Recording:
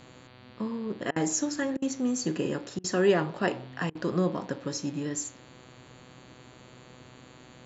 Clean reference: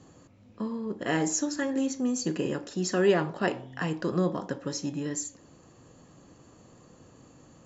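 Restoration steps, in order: de-hum 125.7 Hz, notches 37; interpolate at 1.11/1.77/2.79/3.90 s, 50 ms

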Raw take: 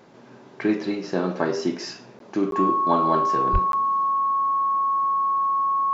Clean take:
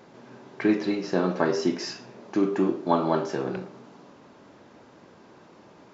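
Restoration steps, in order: band-stop 1.1 kHz, Q 30; de-plosive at 3.52 s; interpolate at 2.19/2.51/3.72 s, 12 ms

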